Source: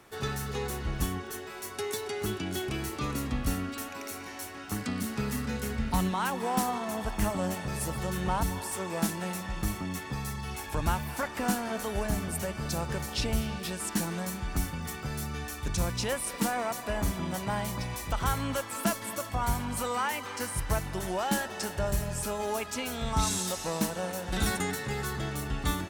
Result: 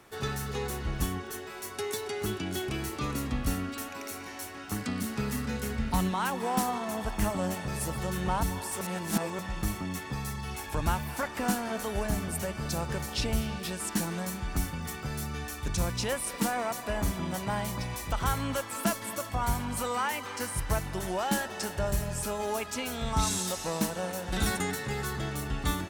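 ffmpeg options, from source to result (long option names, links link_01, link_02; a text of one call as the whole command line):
ffmpeg -i in.wav -filter_complex "[0:a]asplit=3[link_01][link_02][link_03];[link_01]atrim=end=8.812[link_04];[link_02]atrim=start=8.808:end=9.392,asetpts=PTS-STARTPTS,areverse[link_05];[link_03]atrim=start=9.388[link_06];[link_04][link_05]acrossfade=duration=0.004:curve1=hsin:curve2=hsin[link_07];[link_07][link_06]acrossfade=duration=0.004:curve1=hsin:curve2=hsin" out.wav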